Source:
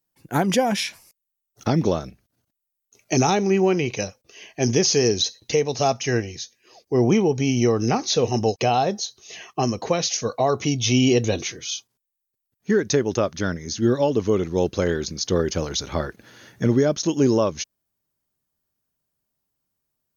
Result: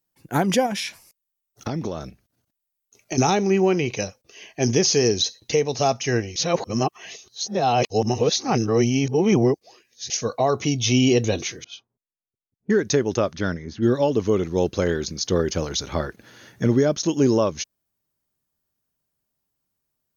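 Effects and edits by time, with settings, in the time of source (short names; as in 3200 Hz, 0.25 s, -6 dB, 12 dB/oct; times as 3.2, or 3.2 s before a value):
0.66–3.18 compressor, threshold -23 dBFS
6.36–10.1 reverse
11.64–14.01 low-pass opened by the level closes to 360 Hz, open at -19 dBFS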